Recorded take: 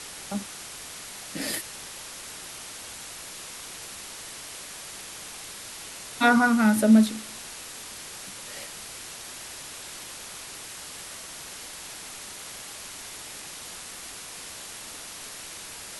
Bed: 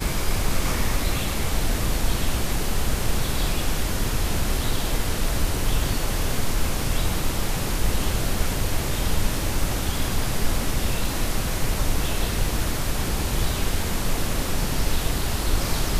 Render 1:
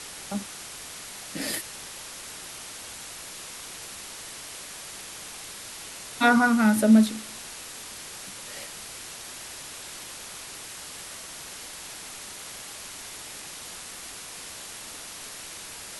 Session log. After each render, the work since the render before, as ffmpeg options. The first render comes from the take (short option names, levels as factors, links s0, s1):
-af anull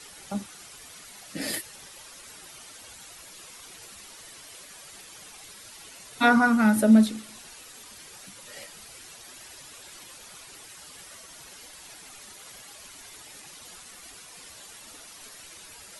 -af "afftdn=nr=10:nf=-41"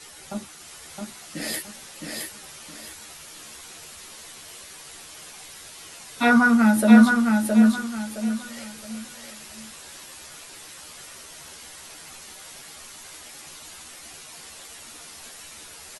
-filter_complex "[0:a]asplit=2[s0][s1];[s1]adelay=13,volume=0.708[s2];[s0][s2]amix=inputs=2:normalize=0,aecho=1:1:666|1332|1998|2664:0.668|0.207|0.0642|0.0199"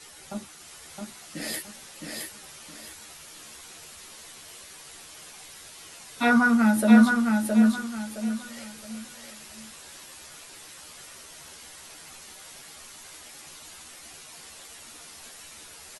-af "volume=0.708"